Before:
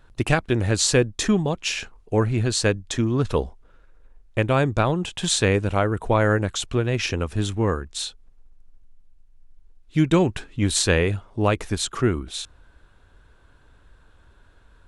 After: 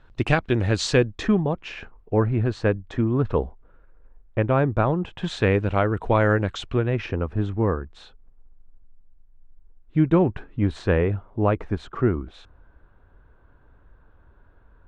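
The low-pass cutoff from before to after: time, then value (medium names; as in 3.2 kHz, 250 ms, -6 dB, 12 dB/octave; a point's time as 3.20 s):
1.00 s 4 kHz
1.42 s 1.6 kHz
5.05 s 1.6 kHz
5.81 s 3.5 kHz
6.49 s 3.5 kHz
7.17 s 1.4 kHz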